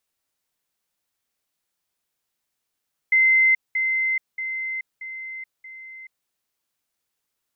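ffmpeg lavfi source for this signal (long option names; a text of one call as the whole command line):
ffmpeg -f lavfi -i "aevalsrc='pow(10,(-13.5-6*floor(t/0.63))/20)*sin(2*PI*2070*t)*clip(min(mod(t,0.63),0.43-mod(t,0.63))/0.005,0,1)':duration=3.15:sample_rate=44100" out.wav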